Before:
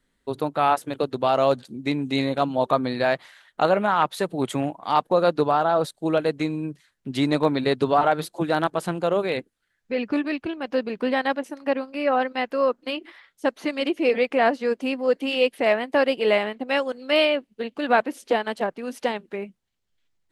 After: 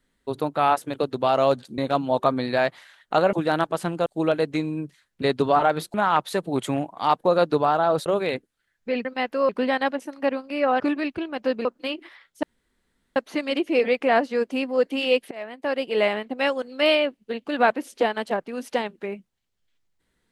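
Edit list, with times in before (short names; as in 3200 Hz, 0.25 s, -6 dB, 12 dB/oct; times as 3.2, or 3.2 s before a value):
1.78–2.25 cut
3.8–5.92 swap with 8.36–9.09
7.08–7.64 cut
10.08–10.93 swap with 12.24–12.68
13.46 insert room tone 0.73 s
15.61–16.45 fade in, from -22.5 dB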